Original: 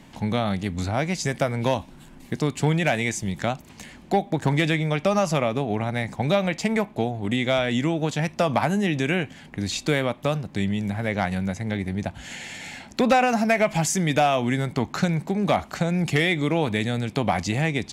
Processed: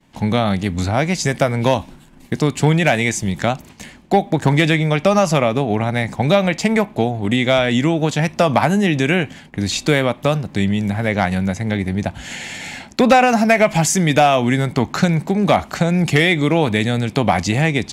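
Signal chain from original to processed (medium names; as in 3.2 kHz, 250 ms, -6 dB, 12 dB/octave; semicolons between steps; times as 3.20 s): expander -39 dBFS; trim +7 dB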